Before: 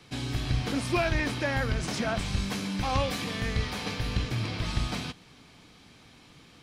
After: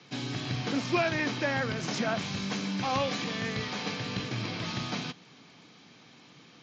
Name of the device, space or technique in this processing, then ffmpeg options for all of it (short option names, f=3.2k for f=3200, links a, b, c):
Bluetooth headset: -af "highpass=f=130:w=0.5412,highpass=f=130:w=1.3066,aresample=16000,aresample=44100" -ar 16000 -c:a sbc -b:a 64k